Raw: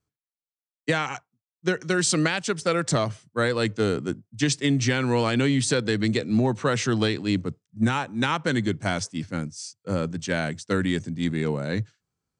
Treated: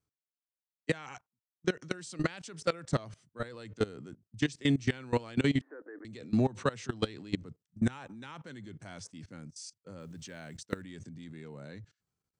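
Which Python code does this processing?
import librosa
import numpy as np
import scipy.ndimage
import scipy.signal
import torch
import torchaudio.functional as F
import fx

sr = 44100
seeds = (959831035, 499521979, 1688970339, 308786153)

y = fx.cheby1_bandpass(x, sr, low_hz=280.0, high_hz=1800.0, order=5, at=(5.61, 6.05))
y = fx.level_steps(y, sr, step_db=21)
y = fx.quant_float(y, sr, bits=4, at=(10.0, 10.82))
y = y * librosa.db_to_amplitude(-3.5)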